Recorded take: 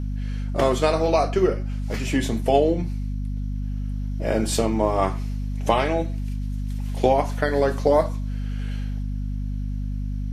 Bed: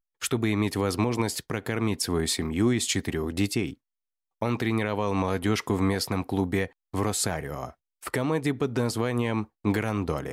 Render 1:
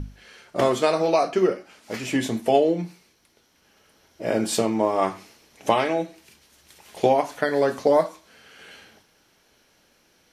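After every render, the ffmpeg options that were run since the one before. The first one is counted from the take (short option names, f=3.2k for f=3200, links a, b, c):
-af "bandreject=f=50:t=h:w=6,bandreject=f=100:t=h:w=6,bandreject=f=150:t=h:w=6,bandreject=f=200:t=h:w=6,bandreject=f=250:t=h:w=6"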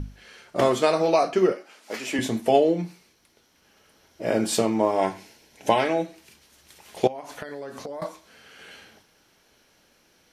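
-filter_complex "[0:a]asettb=1/sr,asplit=3[a][b][c];[a]atrim=end=1.524[d];[b]atrim=start=1.52:end=2.19,asetpts=PTS-STARTPTS,afade=t=in:d=0.004:c=qsin,afade=t=out:st=0.666:d=0.004:c=qsin,highpass=320[e];[c]atrim=start=2.186[f];[d][e]acrossfade=d=0.004:c1=hsin:c2=qsin[g];[g][f]acrossfade=d=0.004:c1=qsin:c2=hsin,asettb=1/sr,asplit=3[h][i][j];[h]atrim=end=4.914[k];[i]atrim=start=4.91:end=5.82,asetpts=PTS-STARTPTS,afade=t=in:d=0.004:c=qsin,afade=t=out:st=0.906:d=0.004:c=qsin,asuperstop=centerf=1200:order=8:qfactor=5.9[l];[j]atrim=start=5.816[m];[k][l]acrossfade=d=0.004:c1=hsin:c2=qsin[n];[n][m]acrossfade=d=0.004:c1=qsin:c2=hsin,asettb=1/sr,asplit=3[o][p][q];[o]atrim=end=7.074[r];[p]atrim=start=7.07:end=8.02,asetpts=PTS-STARTPTS,afade=t=in:d=0.004:c=qsin,afade=t=out:st=0.946:d=0.004:c=qsin,acompressor=threshold=-32dB:ratio=10:attack=3.2:release=140:knee=1:detection=peak[s];[q]atrim=start=8.016[t];[r][s]acrossfade=d=0.004:c1=hsin:c2=qsin[u];[u][t]acrossfade=d=0.004:c1=qsin:c2=hsin"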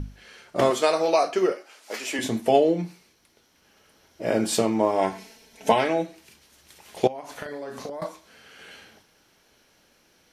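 -filter_complex "[0:a]asettb=1/sr,asplit=3[a][b][c];[a]atrim=end=0.704[d];[b]atrim=start=0.7:end=2.24,asetpts=PTS-STARTPTS,afade=t=in:d=0.004:c=qsin,afade=t=out:st=1.536:d=0.004:c=qsin,bass=f=250:g=-12,treble=f=4k:g=3[e];[c]atrim=start=2.236[f];[d][e]acrossfade=d=0.004:c1=hsin:c2=qsin[g];[g][f]acrossfade=d=0.004:c1=qsin:c2=hsin,asettb=1/sr,asplit=3[h][i][j];[h]atrim=end=5.124[k];[i]atrim=start=5.12:end=5.72,asetpts=PTS-STARTPTS,afade=t=in:d=0.004:c=qsin,afade=t=out:st=0.596:d=0.004:c=qsin,aecho=1:1:4.5:0.84,atrim=end_sample=26460[l];[j]atrim=start=5.716[m];[k][l]acrossfade=d=0.004:c1=hsin:c2=qsin[n];[n][m]acrossfade=d=0.004:c1=qsin:c2=hsin,asettb=1/sr,asplit=3[o][p][q];[o]atrim=end=7.324[r];[p]atrim=start=7.32:end=7.9,asetpts=PTS-STARTPTS,afade=t=in:d=0.004:c=qsin,afade=t=out:st=0.576:d=0.004:c=qsin,asplit=2[s][t];[t]adelay=39,volume=-5.5dB[u];[s][u]amix=inputs=2:normalize=0,atrim=end_sample=25578[v];[q]atrim=start=7.896[w];[r][v]acrossfade=d=0.004:c1=hsin:c2=qsin[x];[x][w]acrossfade=d=0.004:c1=qsin:c2=hsin"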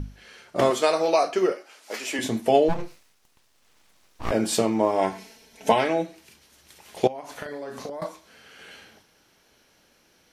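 -filter_complex "[0:a]asplit=3[a][b][c];[a]afade=t=out:st=2.68:d=0.02[d];[b]aeval=exprs='abs(val(0))':c=same,afade=t=in:st=2.68:d=0.02,afade=t=out:st=4.3:d=0.02[e];[c]afade=t=in:st=4.3:d=0.02[f];[d][e][f]amix=inputs=3:normalize=0"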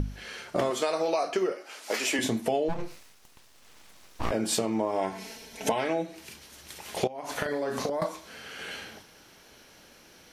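-filter_complex "[0:a]asplit=2[a][b];[b]alimiter=limit=-15.5dB:level=0:latency=1:release=200,volume=2dB[c];[a][c]amix=inputs=2:normalize=0,acompressor=threshold=-26dB:ratio=4"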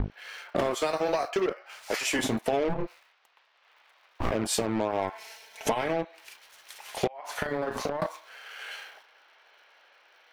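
-filter_complex "[0:a]acrossover=split=580|3600[a][b][c];[a]acrusher=bits=4:mix=0:aa=0.5[d];[c]aeval=exprs='sgn(val(0))*max(abs(val(0))-0.002,0)':c=same[e];[d][b][e]amix=inputs=3:normalize=0"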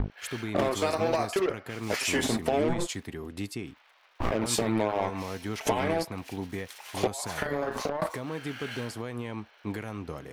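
-filter_complex "[1:a]volume=-9.5dB[a];[0:a][a]amix=inputs=2:normalize=0"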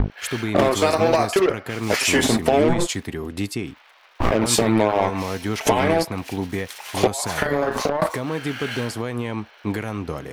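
-af "volume=9dB,alimiter=limit=-2dB:level=0:latency=1"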